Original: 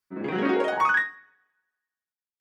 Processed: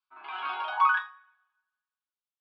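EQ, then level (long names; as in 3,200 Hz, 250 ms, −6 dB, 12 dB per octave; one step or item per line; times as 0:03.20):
high-pass filter 790 Hz 24 dB per octave
high-frequency loss of the air 140 metres
phaser with its sweep stopped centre 1,900 Hz, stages 6
+2.0 dB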